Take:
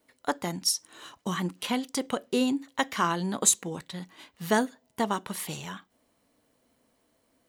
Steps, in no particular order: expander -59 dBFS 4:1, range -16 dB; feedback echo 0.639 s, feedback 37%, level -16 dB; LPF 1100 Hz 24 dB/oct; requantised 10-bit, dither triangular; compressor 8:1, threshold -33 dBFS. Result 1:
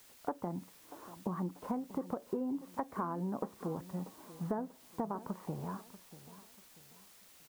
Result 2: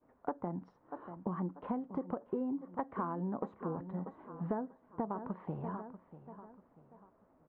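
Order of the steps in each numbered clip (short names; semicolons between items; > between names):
expander > LPF > requantised > compressor > feedback echo; feedback echo > requantised > expander > LPF > compressor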